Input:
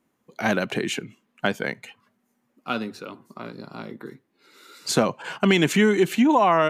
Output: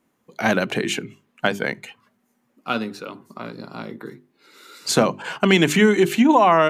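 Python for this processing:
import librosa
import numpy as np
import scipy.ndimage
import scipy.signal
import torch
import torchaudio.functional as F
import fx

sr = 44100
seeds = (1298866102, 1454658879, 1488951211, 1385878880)

y = fx.hum_notches(x, sr, base_hz=50, count=8)
y = F.gain(torch.from_numpy(y), 3.5).numpy()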